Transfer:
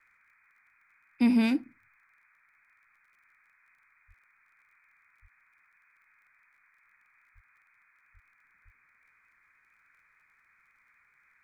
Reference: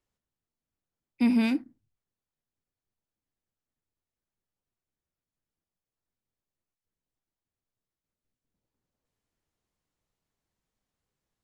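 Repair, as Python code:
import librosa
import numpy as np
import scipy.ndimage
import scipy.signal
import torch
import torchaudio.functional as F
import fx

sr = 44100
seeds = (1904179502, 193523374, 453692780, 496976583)

y = fx.fix_declick_ar(x, sr, threshold=6.5)
y = fx.fix_deplosive(y, sr, at_s=(4.07, 5.21, 7.34, 8.13, 8.64))
y = fx.noise_reduce(y, sr, print_start_s=2.74, print_end_s=3.24, reduce_db=25.0)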